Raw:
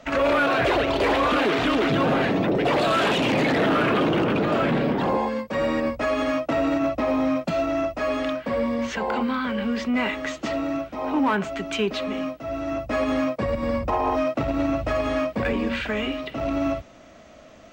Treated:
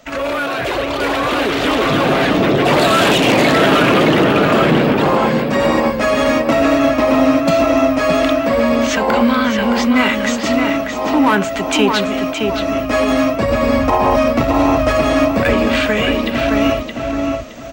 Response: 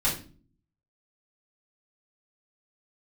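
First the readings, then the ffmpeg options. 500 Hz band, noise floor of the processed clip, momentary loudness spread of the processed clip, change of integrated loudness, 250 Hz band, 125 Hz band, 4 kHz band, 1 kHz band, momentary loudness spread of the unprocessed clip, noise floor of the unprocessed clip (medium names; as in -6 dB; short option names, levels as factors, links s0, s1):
+9.0 dB, -22 dBFS, 7 LU, +9.0 dB, +9.5 dB, +9.0 dB, +11.0 dB, +9.0 dB, 7 LU, -48 dBFS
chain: -filter_complex "[0:a]aemphasis=mode=production:type=50kf,asplit=2[s0][s1];[s1]adelay=618,lowpass=f=3900:p=1,volume=0.631,asplit=2[s2][s3];[s3]adelay=618,lowpass=f=3900:p=1,volume=0.28,asplit=2[s4][s5];[s5]adelay=618,lowpass=f=3900:p=1,volume=0.28,asplit=2[s6][s7];[s7]adelay=618,lowpass=f=3900:p=1,volume=0.28[s8];[s0][s2][s4][s6][s8]amix=inputs=5:normalize=0,dynaudnorm=f=210:g=17:m=3.76"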